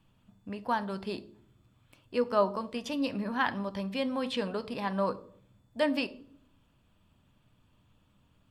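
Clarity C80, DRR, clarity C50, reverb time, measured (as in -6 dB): 22.5 dB, 11.5 dB, 18.0 dB, 0.60 s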